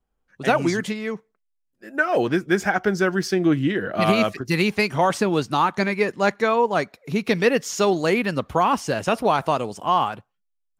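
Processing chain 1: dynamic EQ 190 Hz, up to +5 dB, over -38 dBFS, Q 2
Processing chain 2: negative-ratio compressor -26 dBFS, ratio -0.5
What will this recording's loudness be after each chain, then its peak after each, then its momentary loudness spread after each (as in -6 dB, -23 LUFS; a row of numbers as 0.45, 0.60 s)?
-20.5, -27.5 LUFS; -4.5, -8.0 dBFS; 6, 6 LU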